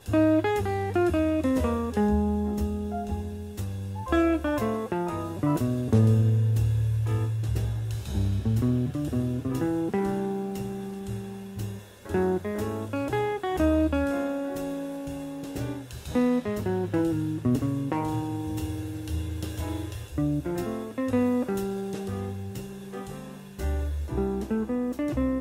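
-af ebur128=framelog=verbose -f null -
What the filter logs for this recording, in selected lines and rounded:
Integrated loudness:
  I:         -27.9 LUFS
  Threshold: -38.1 LUFS
Loudness range:
  LRA:         5.5 LU
  Threshold: -48.3 LUFS
  LRA low:   -31.0 LUFS
  LRA high:  -25.4 LUFS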